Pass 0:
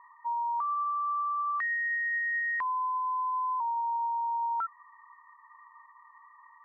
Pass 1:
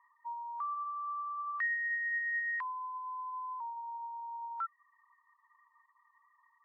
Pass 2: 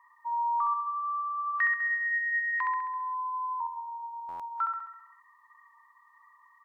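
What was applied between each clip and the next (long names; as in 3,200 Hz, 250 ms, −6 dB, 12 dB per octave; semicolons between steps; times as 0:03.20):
reverb reduction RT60 0.61 s; high-pass filter 1,200 Hz 12 dB per octave; expander for the loud parts 1.5 to 1, over −48 dBFS
repeating echo 67 ms, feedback 58%, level −4 dB; buffer that repeats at 0:04.28, samples 512, times 9; level +7 dB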